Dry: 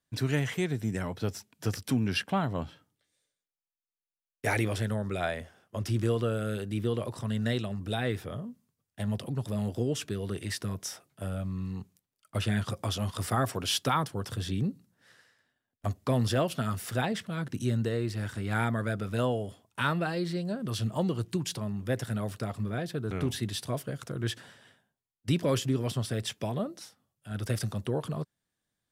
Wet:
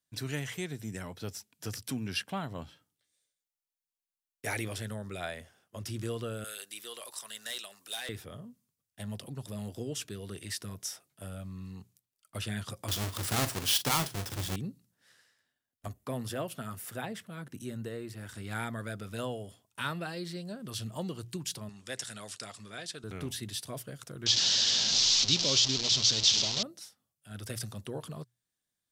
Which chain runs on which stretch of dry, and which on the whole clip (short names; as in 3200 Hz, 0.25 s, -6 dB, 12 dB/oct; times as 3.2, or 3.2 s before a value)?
6.44–8.09 HPF 750 Hz + high shelf 3500 Hz +10.5 dB + hard clip -29.5 dBFS
12.88–14.56 half-waves squared off + doubler 42 ms -12 dB
15.88–18.29 HPF 110 Hz 6 dB/oct + bell 4800 Hz -8 dB 1.7 oct
21.69–23.04 LPF 8400 Hz 24 dB/oct + tilt +3.5 dB/oct
24.26–26.63 delta modulation 32 kbps, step -27.5 dBFS + resonant high shelf 2700 Hz +13 dB, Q 1.5
whole clip: high shelf 2800 Hz +9.5 dB; notches 60/120 Hz; gain -8 dB